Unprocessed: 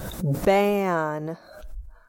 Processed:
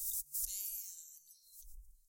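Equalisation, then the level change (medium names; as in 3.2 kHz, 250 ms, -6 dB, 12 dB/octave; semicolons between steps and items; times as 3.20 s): inverse Chebyshev band-stop 210–1300 Hz, stop band 80 dB; tone controls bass -8 dB, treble +3 dB; bass shelf 170 Hz -10 dB; +2.5 dB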